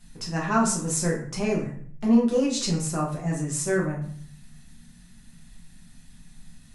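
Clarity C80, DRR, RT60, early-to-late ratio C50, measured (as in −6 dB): 10.5 dB, −4.0 dB, 0.55 s, 7.0 dB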